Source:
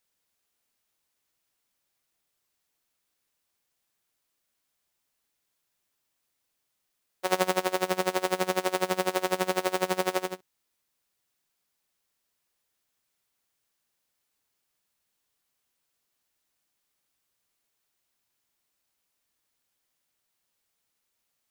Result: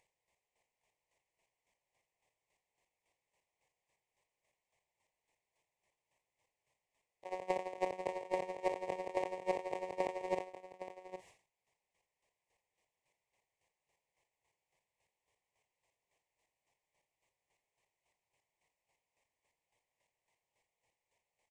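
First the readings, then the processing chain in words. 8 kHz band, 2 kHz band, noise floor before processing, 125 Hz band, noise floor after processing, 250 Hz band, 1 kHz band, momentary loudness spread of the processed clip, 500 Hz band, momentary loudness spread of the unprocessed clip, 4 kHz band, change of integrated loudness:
-23.0 dB, -15.5 dB, -79 dBFS, -16.5 dB, under -85 dBFS, -13.5 dB, -10.0 dB, 13 LU, -9.0 dB, 5 LU, -21.5 dB, -11.5 dB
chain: gate -35 dBFS, range -34 dB; graphic EQ 125/250/500/1000/2000/4000/8000 Hz +4/-8/+6/+8/+11/-6/+12 dB; upward compressor, threshold -41 dBFS; auto swell 0.255 s; soft clip -14.5 dBFS, distortion -16 dB; chopper 3.6 Hz, depth 65%, duty 25%; Butterworth band-stop 1400 Hz, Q 1.2; tape spacing loss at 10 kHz 22 dB; echo 0.813 s -11 dB; sustainer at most 140 dB/s

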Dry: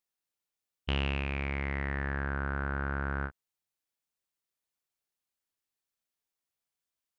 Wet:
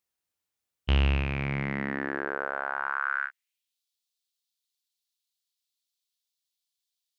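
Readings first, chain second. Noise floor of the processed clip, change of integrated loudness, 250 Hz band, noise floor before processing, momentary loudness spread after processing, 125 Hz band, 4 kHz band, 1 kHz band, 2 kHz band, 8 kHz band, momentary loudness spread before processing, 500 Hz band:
under -85 dBFS, +4.0 dB, +3.5 dB, under -85 dBFS, 6 LU, +4.0 dB, +2.5 dB, +5.5 dB, +5.0 dB, n/a, 4 LU, +4.0 dB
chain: high-pass sweep 67 Hz -> 3800 Hz, 1.06–3.81; gain +2.5 dB

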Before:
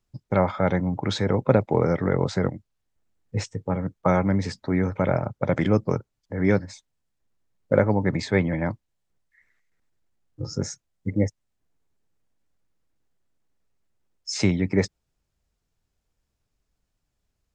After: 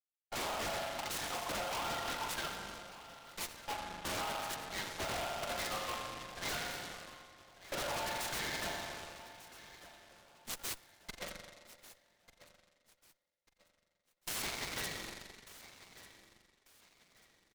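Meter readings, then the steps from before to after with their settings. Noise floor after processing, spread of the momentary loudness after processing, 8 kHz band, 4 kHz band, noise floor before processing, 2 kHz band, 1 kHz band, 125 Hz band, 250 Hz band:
-83 dBFS, 18 LU, -1.5 dB, -1.5 dB, -78 dBFS, -7.0 dB, -8.5 dB, -27.5 dB, -25.5 dB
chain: per-bin expansion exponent 2; steep high-pass 610 Hz 96 dB/oct; gate with hold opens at -55 dBFS; LPF 6700 Hz 24 dB/oct; comb 5.7 ms, depth 59%; compressor 2.5:1, threshold -37 dBFS, peak gain reduction 9.5 dB; spring tank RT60 1.9 s, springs 39 ms, chirp 75 ms, DRR 4 dB; wavefolder -38.5 dBFS; added harmonics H 8 -13 dB, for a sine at -38.5 dBFS; on a send: feedback echo 1.193 s, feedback 33%, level -16.5 dB; on the sum: noise-modulated delay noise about 1700 Hz, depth 0.093 ms; gain +5.5 dB

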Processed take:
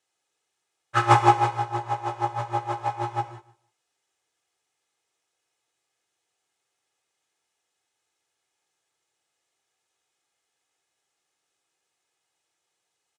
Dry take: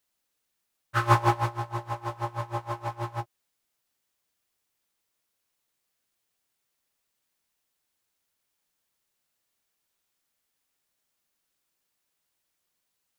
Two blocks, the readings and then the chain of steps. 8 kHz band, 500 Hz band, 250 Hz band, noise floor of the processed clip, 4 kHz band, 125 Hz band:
+4.0 dB, +3.5 dB, +4.0 dB, -80 dBFS, +4.5 dB, 0.0 dB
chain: tracing distortion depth 0.069 ms; speaker cabinet 130–8900 Hz, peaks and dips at 230 Hz -4 dB, 680 Hz +6 dB, 4600 Hz -4 dB; comb 2.4 ms, depth 51%; feedback echo 0.152 s, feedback 26%, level -19 dB; non-linear reverb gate 0.21 s flat, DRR 8.5 dB; gain +2.5 dB

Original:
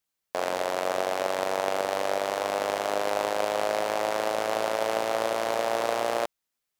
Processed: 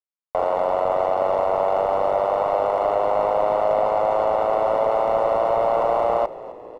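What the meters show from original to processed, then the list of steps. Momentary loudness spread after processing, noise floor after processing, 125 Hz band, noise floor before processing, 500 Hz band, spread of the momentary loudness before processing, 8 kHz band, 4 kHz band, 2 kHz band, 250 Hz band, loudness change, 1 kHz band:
2 LU, -54 dBFS, +7.5 dB, -84 dBFS, +8.0 dB, 2 LU, under -15 dB, n/a, -5.0 dB, +2.0 dB, +7.0 dB, +8.0 dB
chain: HPF 750 Hz 12 dB/oct; sample leveller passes 5; polynomial smoothing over 65 samples; frequency-shifting echo 0.259 s, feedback 64%, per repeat -44 Hz, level -17.5 dB

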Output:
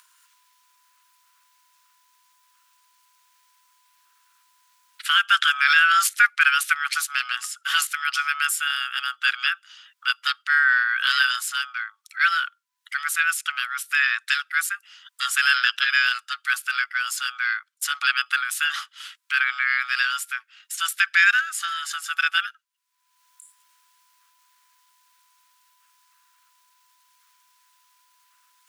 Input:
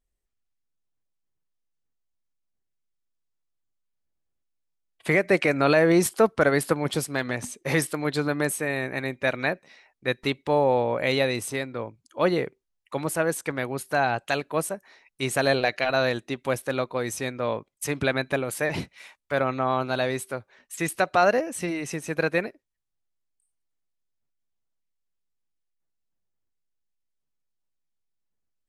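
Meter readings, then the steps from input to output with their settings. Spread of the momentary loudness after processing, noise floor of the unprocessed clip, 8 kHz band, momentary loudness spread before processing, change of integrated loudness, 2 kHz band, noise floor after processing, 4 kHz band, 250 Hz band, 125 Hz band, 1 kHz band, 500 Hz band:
12 LU, -79 dBFS, +5.0 dB, 11 LU, +4.0 dB, +10.0 dB, -69 dBFS, +11.0 dB, under -40 dB, under -40 dB, +2.5 dB, under -40 dB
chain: ring modulator 1000 Hz; upward compressor, threshold -36 dBFS; elliptic high-pass 1400 Hz, stop band 60 dB; gain +9 dB

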